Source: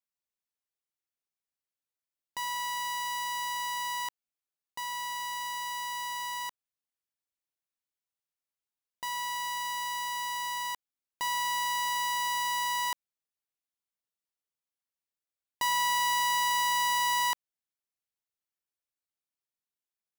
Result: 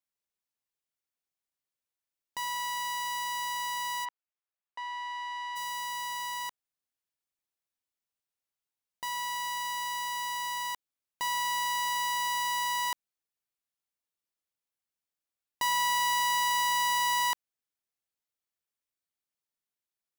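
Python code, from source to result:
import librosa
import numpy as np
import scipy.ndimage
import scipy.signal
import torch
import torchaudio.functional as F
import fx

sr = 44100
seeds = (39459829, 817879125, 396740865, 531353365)

y = fx.bandpass_edges(x, sr, low_hz=540.0, high_hz=fx.line((4.04, 2200.0), (5.55, 3200.0)), at=(4.04, 5.55), fade=0.02)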